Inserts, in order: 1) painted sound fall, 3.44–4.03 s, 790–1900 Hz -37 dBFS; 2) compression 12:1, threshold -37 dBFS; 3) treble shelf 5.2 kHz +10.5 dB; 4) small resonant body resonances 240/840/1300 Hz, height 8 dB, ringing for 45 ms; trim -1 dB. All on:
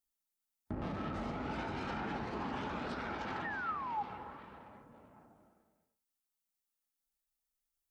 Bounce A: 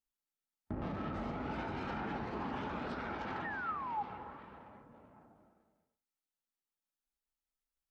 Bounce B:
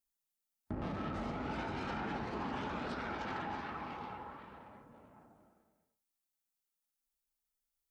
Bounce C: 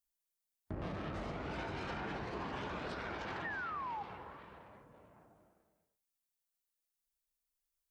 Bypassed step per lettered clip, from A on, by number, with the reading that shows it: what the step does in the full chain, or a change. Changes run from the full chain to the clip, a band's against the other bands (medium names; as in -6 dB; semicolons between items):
3, 4 kHz band -3.0 dB; 1, 2 kHz band -2.0 dB; 4, 250 Hz band -3.5 dB